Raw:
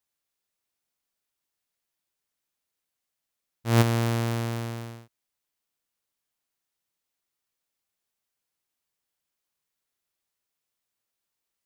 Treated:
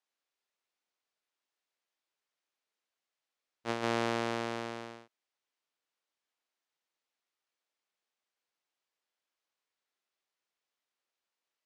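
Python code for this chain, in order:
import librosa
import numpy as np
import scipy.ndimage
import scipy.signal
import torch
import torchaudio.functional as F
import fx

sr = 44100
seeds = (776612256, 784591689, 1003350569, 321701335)

y = scipy.signal.sosfilt(scipy.signal.butter(2, 340.0, 'highpass', fs=sr, output='sos'), x)
y = fx.over_compress(y, sr, threshold_db=-31.0, ratio=-1.0)
y = fx.air_absorb(y, sr, metres=95.0)
y = F.gain(torch.from_numpy(y), -1.0).numpy()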